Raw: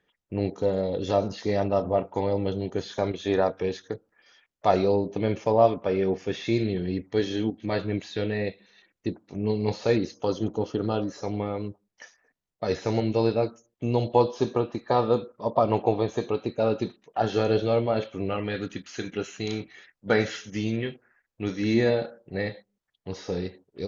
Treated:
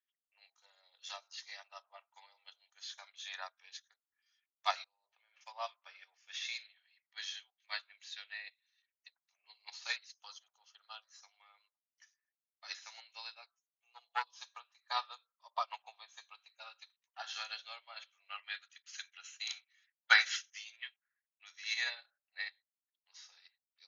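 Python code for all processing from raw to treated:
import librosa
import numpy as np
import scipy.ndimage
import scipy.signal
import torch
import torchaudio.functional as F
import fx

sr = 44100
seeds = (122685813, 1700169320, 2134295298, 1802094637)

y = fx.chain(x, sr, fx.over_compress(threshold_db=-31.0, ratio=-1.0),
    fx.air_absorb(metres=330.0), at=(4.84, 5.41))
y = fx.chain(y, sr, fx.lowpass(hz=3400.0, slope=12),
    fx.peak_eq(hz=450.0, db=-10.0, octaves=0.67), at=(6.68, 7.18))
y = fx.chain(y, sr, fx.high_shelf(hz=2300.0, db=-10.0),
    fx.comb(ms=5.9, depth=0.86),
    fx.tube_stage(drive_db=10.0, bias=0.7), at=(13.46, 14.27))
y = scipy.signal.sosfilt(scipy.signal.bessel(8, 1500.0, 'highpass', norm='mag', fs=sr, output='sos'), y)
y = fx.tilt_eq(y, sr, slope=2.5)
y = fx.upward_expand(y, sr, threshold_db=-46.0, expansion=2.5)
y = y * 10.0 ** (6.5 / 20.0)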